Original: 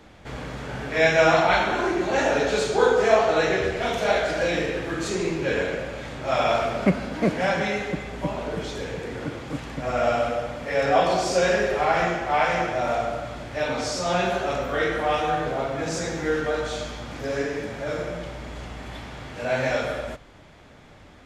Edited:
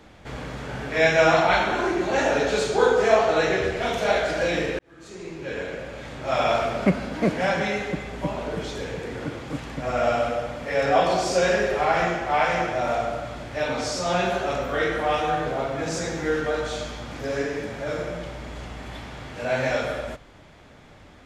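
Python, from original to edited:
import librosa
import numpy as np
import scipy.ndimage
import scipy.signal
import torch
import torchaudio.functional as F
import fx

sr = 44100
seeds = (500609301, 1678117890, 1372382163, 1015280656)

y = fx.edit(x, sr, fx.fade_in_span(start_s=4.79, length_s=1.65), tone=tone)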